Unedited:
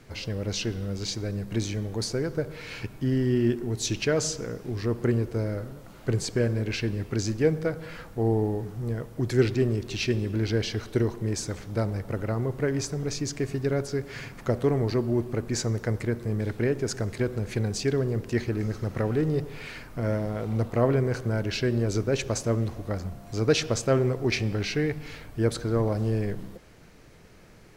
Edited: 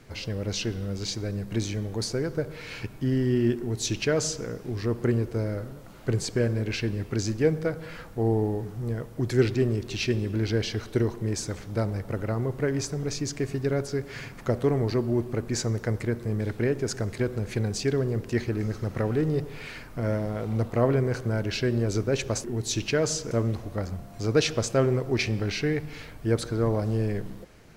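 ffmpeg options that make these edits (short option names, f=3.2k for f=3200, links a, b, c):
-filter_complex "[0:a]asplit=3[a][b][c];[a]atrim=end=22.442[d];[b]atrim=start=3.578:end=4.452[e];[c]atrim=start=22.438[f];[d][e]acrossfade=d=0.004:c1=hsin:c2=hsin[g];[g][f]acrossfade=d=0.004:c1=hsin:c2=hsin"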